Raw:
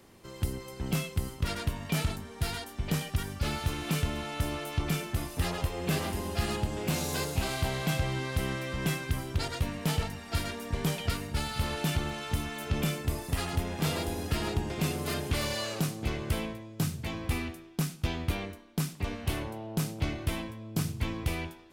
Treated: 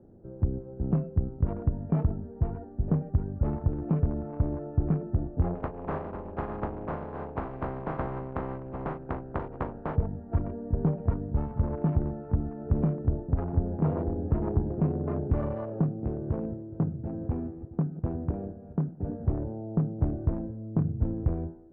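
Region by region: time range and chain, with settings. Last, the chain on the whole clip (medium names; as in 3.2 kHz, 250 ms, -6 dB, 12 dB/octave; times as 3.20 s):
5.54–9.95 s: spectral contrast reduction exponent 0.22 + flutter echo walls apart 6.6 m, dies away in 0.24 s
16.00–19.23 s: backward echo that repeats 210 ms, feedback 54%, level -13 dB + high-pass 120 Hz 6 dB/octave
whole clip: local Wiener filter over 41 samples; low-pass 1.2 kHz 24 dB/octave; trim +5 dB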